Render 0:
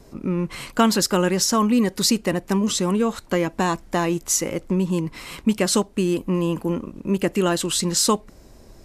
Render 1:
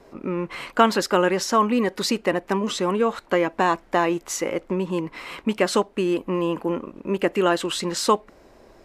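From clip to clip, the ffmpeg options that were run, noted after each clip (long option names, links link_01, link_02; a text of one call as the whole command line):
ffmpeg -i in.wav -af "bass=frequency=250:gain=-14,treble=frequency=4000:gain=-14,volume=3.5dB" out.wav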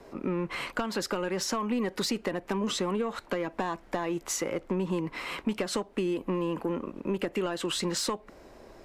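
ffmpeg -i in.wav -filter_complex "[0:a]acompressor=threshold=-20dB:ratio=6,asoftclip=type=tanh:threshold=-16dB,acrossover=split=180[link_01][link_02];[link_02]acompressor=threshold=-29dB:ratio=3[link_03];[link_01][link_03]amix=inputs=2:normalize=0" out.wav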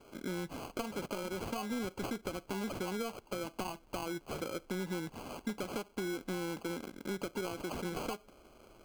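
ffmpeg -i in.wav -af "acrusher=samples=24:mix=1:aa=0.000001,volume=-8dB" out.wav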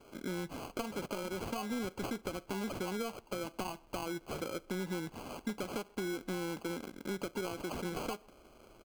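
ffmpeg -i in.wav -filter_complex "[0:a]asplit=2[link_01][link_02];[link_02]adelay=130,highpass=300,lowpass=3400,asoftclip=type=hard:threshold=-34dB,volume=-25dB[link_03];[link_01][link_03]amix=inputs=2:normalize=0" out.wav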